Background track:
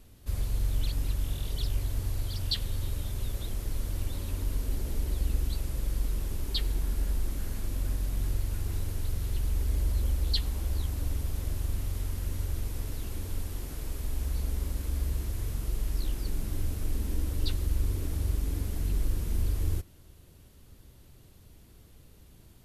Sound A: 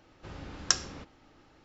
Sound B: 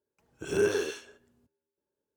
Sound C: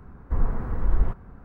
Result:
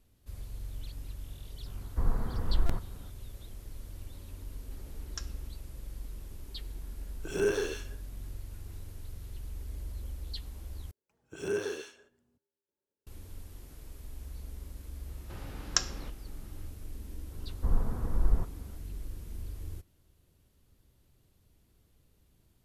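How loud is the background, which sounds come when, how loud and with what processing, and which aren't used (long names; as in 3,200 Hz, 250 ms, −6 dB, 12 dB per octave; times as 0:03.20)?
background track −12 dB
0:01.66: mix in C −5 dB + buffer that repeats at 0:01.00, samples 128, times 11
0:04.47: mix in A −15.5 dB + notch comb filter 250 Hz
0:06.83: mix in B −2.5 dB
0:10.91: overwrite with B −6.5 dB
0:15.06: mix in A −2 dB
0:17.32: mix in C −4.5 dB + low-pass filter 1,200 Hz 6 dB per octave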